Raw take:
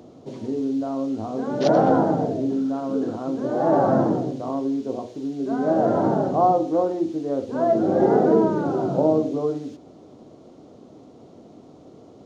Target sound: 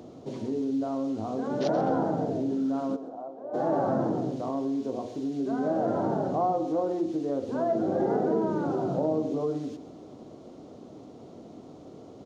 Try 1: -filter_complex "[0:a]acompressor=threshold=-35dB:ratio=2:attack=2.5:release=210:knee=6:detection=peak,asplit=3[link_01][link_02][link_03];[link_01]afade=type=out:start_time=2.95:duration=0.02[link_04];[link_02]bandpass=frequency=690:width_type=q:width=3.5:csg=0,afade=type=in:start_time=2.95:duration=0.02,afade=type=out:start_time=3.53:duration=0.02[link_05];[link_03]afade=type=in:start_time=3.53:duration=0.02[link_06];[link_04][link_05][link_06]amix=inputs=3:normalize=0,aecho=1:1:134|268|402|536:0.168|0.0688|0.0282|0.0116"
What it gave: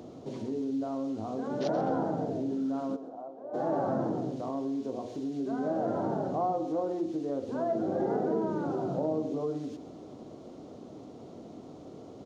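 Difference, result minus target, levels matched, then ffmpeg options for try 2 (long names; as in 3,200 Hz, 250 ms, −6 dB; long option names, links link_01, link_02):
downward compressor: peak gain reduction +3.5 dB
-filter_complex "[0:a]acompressor=threshold=-28dB:ratio=2:attack=2.5:release=210:knee=6:detection=peak,asplit=3[link_01][link_02][link_03];[link_01]afade=type=out:start_time=2.95:duration=0.02[link_04];[link_02]bandpass=frequency=690:width_type=q:width=3.5:csg=0,afade=type=in:start_time=2.95:duration=0.02,afade=type=out:start_time=3.53:duration=0.02[link_05];[link_03]afade=type=in:start_time=3.53:duration=0.02[link_06];[link_04][link_05][link_06]amix=inputs=3:normalize=0,aecho=1:1:134|268|402|536:0.168|0.0688|0.0282|0.0116"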